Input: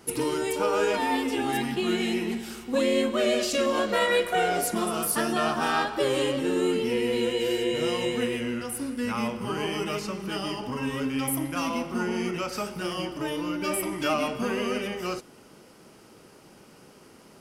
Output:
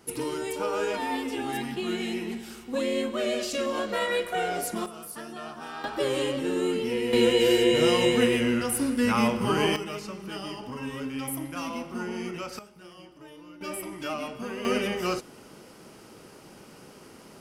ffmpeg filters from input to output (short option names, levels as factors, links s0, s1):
-af "asetnsamples=n=441:p=0,asendcmd='4.86 volume volume -13.5dB;5.84 volume volume -2dB;7.13 volume volume 5.5dB;9.76 volume volume -5dB;12.59 volume volume -17dB;13.61 volume volume -7dB;14.65 volume volume 3dB',volume=0.631"